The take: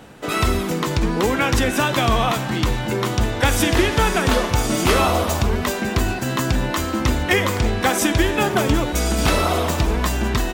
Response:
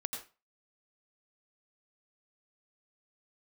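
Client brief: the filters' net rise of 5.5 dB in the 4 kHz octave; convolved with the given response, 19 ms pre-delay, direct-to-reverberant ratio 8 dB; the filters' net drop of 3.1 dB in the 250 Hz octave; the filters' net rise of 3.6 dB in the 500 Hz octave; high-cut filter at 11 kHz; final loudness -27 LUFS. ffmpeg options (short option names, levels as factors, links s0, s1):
-filter_complex "[0:a]lowpass=11000,equalizer=f=250:t=o:g=-7,equalizer=f=500:t=o:g=6.5,equalizer=f=4000:t=o:g=7,asplit=2[s0][s1];[1:a]atrim=start_sample=2205,adelay=19[s2];[s1][s2]afir=irnorm=-1:irlink=0,volume=0.355[s3];[s0][s3]amix=inputs=2:normalize=0,volume=0.335"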